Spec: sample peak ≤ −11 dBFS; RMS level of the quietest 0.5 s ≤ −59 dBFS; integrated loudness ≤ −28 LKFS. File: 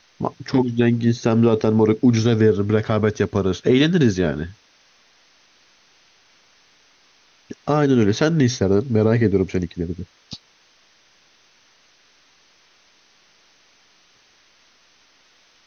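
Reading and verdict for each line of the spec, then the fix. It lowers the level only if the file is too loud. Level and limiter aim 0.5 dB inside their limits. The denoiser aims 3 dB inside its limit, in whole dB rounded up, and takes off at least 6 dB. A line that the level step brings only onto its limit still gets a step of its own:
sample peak −6.0 dBFS: out of spec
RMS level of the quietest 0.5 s −57 dBFS: out of spec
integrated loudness −19.0 LKFS: out of spec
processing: level −9.5 dB

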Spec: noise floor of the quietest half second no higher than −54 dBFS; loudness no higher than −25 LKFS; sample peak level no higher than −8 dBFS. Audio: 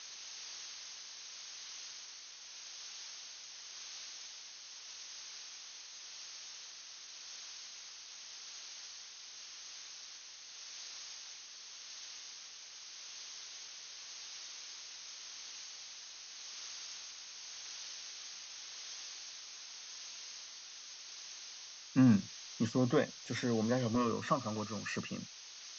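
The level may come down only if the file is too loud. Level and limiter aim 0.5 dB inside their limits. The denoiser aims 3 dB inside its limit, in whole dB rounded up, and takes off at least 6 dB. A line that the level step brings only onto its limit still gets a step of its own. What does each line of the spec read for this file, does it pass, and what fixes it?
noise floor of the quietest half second −52 dBFS: out of spec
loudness −41.0 LKFS: in spec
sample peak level −17.5 dBFS: in spec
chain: broadband denoise 6 dB, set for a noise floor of −52 dBFS

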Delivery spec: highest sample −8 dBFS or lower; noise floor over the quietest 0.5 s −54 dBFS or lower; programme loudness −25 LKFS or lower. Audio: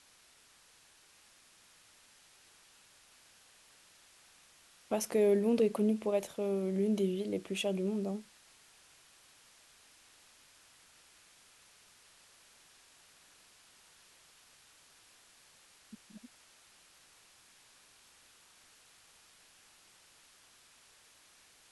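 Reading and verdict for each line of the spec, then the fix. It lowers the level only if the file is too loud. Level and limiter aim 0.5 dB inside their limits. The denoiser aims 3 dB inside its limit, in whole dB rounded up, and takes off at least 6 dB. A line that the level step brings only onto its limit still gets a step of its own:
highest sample −18.5 dBFS: in spec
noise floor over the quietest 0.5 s −63 dBFS: in spec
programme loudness −32.5 LKFS: in spec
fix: no processing needed

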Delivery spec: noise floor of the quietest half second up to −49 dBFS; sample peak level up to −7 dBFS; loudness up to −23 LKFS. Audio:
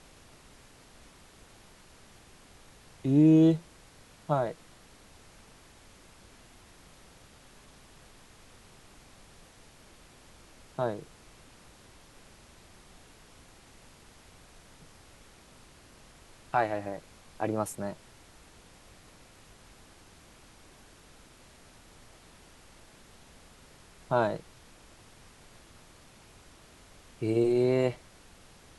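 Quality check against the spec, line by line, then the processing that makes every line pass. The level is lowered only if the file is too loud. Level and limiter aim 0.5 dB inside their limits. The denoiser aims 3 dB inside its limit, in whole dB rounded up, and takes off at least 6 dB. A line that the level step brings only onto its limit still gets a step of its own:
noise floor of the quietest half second −55 dBFS: in spec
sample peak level −12.5 dBFS: in spec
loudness −28.0 LKFS: in spec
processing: no processing needed

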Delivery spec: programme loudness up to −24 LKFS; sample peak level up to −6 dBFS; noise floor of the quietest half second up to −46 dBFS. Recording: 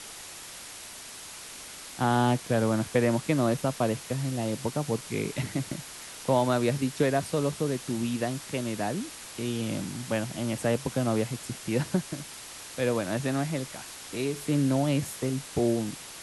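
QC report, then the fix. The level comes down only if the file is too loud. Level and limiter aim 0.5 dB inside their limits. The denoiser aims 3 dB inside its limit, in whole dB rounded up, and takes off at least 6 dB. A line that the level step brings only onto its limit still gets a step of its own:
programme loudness −29.0 LKFS: in spec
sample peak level −11.0 dBFS: in spec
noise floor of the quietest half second −43 dBFS: out of spec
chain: broadband denoise 6 dB, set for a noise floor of −43 dBFS

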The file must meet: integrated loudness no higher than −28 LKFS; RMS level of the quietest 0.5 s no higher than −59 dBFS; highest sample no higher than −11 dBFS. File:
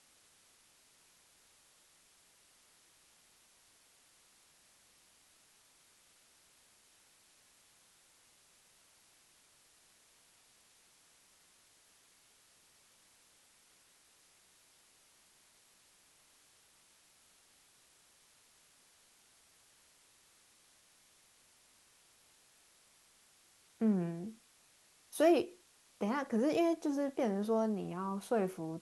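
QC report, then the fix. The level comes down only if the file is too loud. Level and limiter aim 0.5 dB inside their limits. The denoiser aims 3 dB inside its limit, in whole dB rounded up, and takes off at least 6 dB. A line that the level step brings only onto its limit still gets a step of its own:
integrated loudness −34.5 LKFS: in spec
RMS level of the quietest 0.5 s −67 dBFS: in spec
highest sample −17.0 dBFS: in spec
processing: no processing needed

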